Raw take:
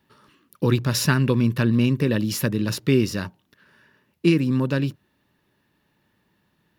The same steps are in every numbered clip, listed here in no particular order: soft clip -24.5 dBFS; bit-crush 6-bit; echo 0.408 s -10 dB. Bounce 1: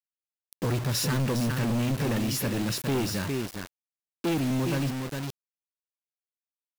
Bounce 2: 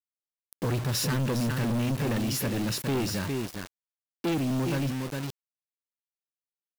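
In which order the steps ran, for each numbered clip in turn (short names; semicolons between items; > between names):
echo > soft clip > bit-crush; echo > bit-crush > soft clip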